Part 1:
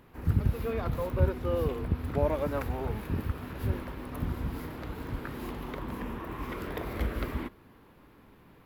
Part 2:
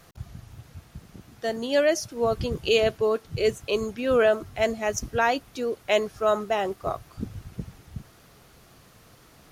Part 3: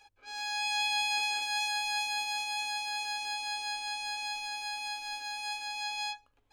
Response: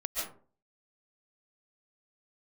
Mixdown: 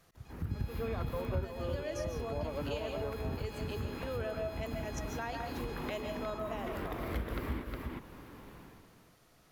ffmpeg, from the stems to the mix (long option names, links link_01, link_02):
-filter_complex "[0:a]dynaudnorm=framelen=290:gausssize=3:maxgain=11.5dB,adelay=150,volume=-6.5dB,asplit=2[link_01][link_02];[link_02]volume=-8dB[link_03];[1:a]volume=-15.5dB,asplit=3[link_04][link_05][link_06];[link_05]volume=-4.5dB[link_07];[2:a]acrossover=split=4800[link_08][link_09];[link_09]acompressor=threshold=-50dB:ratio=4:attack=1:release=60[link_10];[link_08][link_10]amix=inputs=2:normalize=0,acompressor=threshold=-43dB:ratio=6,adelay=250,volume=-4.5dB[link_11];[link_06]apad=whole_len=388257[link_12];[link_01][link_12]sidechaincompress=threshold=-44dB:ratio=8:attack=16:release=474[link_13];[3:a]atrim=start_sample=2205[link_14];[link_07][link_14]afir=irnorm=-1:irlink=0[link_15];[link_03]aecho=0:1:361:1[link_16];[link_13][link_04][link_11][link_15][link_16]amix=inputs=5:normalize=0,acompressor=threshold=-37dB:ratio=2.5"